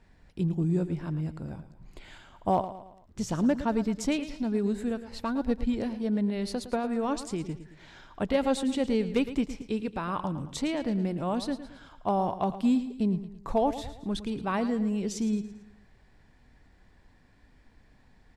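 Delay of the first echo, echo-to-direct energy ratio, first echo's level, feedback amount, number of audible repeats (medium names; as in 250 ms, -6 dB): 111 ms, -12.0 dB, -13.0 dB, 44%, 4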